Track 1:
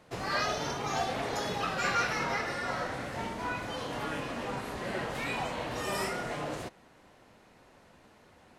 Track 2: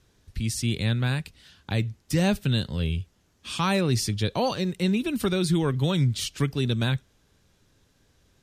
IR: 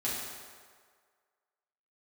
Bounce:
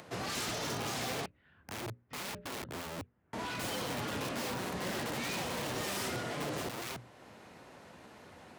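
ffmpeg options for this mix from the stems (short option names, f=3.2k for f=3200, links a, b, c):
-filter_complex "[0:a]aeval=exprs='0.0251*(abs(mod(val(0)/0.0251+3,4)-2)-1)':c=same,volume=1dB,asplit=3[a][b][c];[a]atrim=end=1.26,asetpts=PTS-STARTPTS,afade=t=out:st=1.256:d=0.004:c=hsin[d];[b]atrim=start=1.26:end=3.33,asetpts=PTS-STARTPTS,volume=0[e];[c]atrim=start=3.33,asetpts=PTS-STARTPTS,afade=t=in:d=0.004:c=hsin[f];[d][e][f]concat=n=3:v=0:a=1[g];[1:a]lowpass=f=2k:w=0.5412,lowpass=f=2k:w=1.3066,bandreject=f=60:t=h:w=6,bandreject=f=120:t=h:w=6,bandreject=f=180:t=h:w=6,bandreject=f=240:t=h:w=6,bandreject=f=300:t=h:w=6,bandreject=f=360:t=h:w=6,bandreject=f=420:t=h:w=6,bandreject=f=480:t=h:w=6,bandreject=f=540:t=h:w=6,bandreject=f=600:t=h:w=6,aeval=exprs='(mod(23.7*val(0)+1,2)-1)/23.7':c=same,volume=-8dB[h];[g][h]amix=inputs=2:normalize=0,acrossover=split=480|3000[i][j][k];[j]acompressor=threshold=-39dB:ratio=6[l];[i][l][k]amix=inputs=3:normalize=0,highpass=82,acompressor=mode=upward:threshold=-47dB:ratio=2.5"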